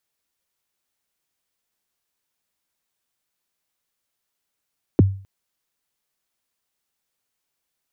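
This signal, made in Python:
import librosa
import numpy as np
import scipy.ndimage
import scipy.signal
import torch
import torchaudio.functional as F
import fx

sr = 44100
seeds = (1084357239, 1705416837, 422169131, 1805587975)

y = fx.drum_kick(sr, seeds[0], length_s=0.26, level_db=-6.5, start_hz=440.0, end_hz=97.0, sweep_ms=20.0, decay_s=0.41, click=False)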